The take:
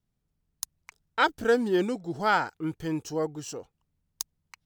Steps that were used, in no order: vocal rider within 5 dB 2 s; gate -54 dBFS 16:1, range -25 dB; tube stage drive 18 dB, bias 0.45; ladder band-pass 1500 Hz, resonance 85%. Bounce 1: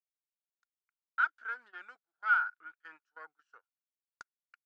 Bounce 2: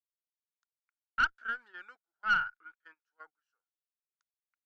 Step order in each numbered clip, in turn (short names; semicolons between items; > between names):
tube stage > vocal rider > ladder band-pass > gate; ladder band-pass > vocal rider > tube stage > gate